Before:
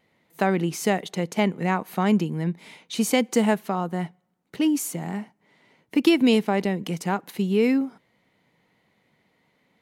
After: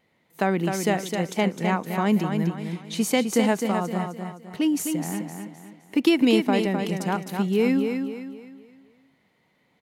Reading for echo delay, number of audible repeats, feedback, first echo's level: 0.258 s, 4, 38%, -6.0 dB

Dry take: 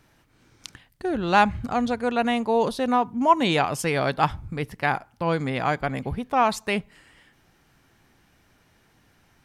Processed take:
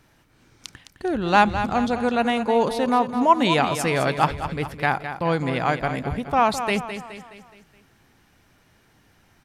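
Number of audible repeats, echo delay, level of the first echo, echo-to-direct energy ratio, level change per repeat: 4, 0.21 s, -10.0 dB, -9.0 dB, -6.5 dB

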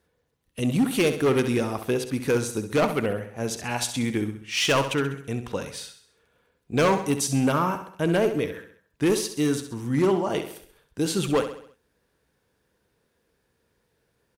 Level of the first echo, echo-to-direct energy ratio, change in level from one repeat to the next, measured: -10.0 dB, -9.0 dB, -6.5 dB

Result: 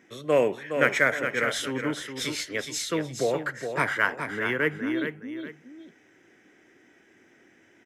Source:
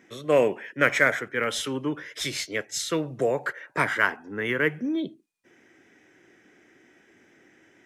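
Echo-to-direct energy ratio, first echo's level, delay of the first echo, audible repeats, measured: -7.0 dB, -7.5 dB, 0.416 s, 2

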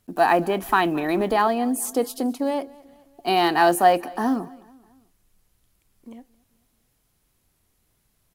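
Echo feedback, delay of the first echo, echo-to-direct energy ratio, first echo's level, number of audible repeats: 50%, 0.218 s, -22.0 dB, -23.0 dB, 2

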